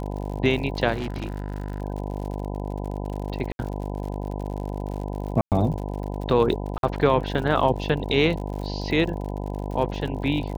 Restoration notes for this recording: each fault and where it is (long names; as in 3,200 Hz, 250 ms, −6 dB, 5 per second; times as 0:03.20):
mains buzz 50 Hz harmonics 20 −30 dBFS
surface crackle 76 per second −33 dBFS
0:00.94–0:01.82: clipping −25 dBFS
0:03.52–0:03.59: drop-out 71 ms
0:05.41–0:05.52: drop-out 108 ms
0:06.78–0:06.83: drop-out 52 ms